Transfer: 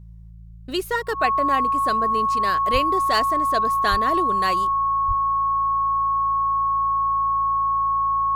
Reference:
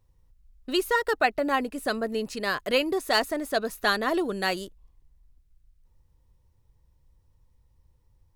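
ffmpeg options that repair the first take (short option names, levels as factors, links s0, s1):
-filter_complex "[0:a]bandreject=f=55.5:t=h:w=4,bandreject=f=111:t=h:w=4,bandreject=f=166.5:t=h:w=4,bandreject=f=1100:w=30,asplit=3[s0][s1][s2];[s0]afade=t=out:st=2.72:d=0.02[s3];[s1]highpass=f=140:w=0.5412,highpass=f=140:w=1.3066,afade=t=in:st=2.72:d=0.02,afade=t=out:st=2.84:d=0.02[s4];[s2]afade=t=in:st=2.84:d=0.02[s5];[s3][s4][s5]amix=inputs=3:normalize=0,asplit=3[s6][s7][s8];[s6]afade=t=out:st=3.9:d=0.02[s9];[s7]highpass=f=140:w=0.5412,highpass=f=140:w=1.3066,afade=t=in:st=3.9:d=0.02,afade=t=out:st=4.02:d=0.02[s10];[s8]afade=t=in:st=4.02:d=0.02[s11];[s9][s10][s11]amix=inputs=3:normalize=0,asplit=3[s12][s13][s14];[s12]afade=t=out:st=5.07:d=0.02[s15];[s13]highpass=f=140:w=0.5412,highpass=f=140:w=1.3066,afade=t=in:st=5.07:d=0.02,afade=t=out:st=5.19:d=0.02[s16];[s14]afade=t=in:st=5.19:d=0.02[s17];[s15][s16][s17]amix=inputs=3:normalize=0"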